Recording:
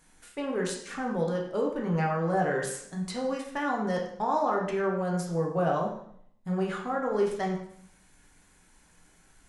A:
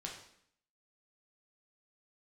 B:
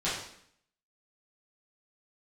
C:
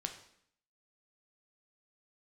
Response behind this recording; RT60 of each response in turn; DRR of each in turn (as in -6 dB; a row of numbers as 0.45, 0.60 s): A; 0.65, 0.65, 0.65 s; -1.5, -11.0, 4.5 dB